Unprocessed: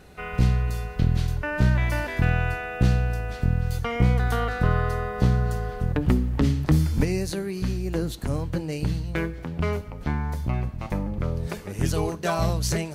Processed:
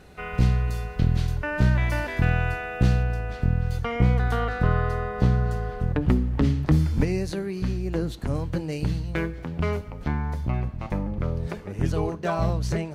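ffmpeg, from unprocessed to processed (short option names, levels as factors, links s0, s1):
-af "asetnsamples=n=441:p=0,asendcmd='3.03 lowpass f 3600;8.35 lowpass f 7400;10.08 lowpass f 3700;11.52 lowpass f 1800',lowpass=f=8700:p=1"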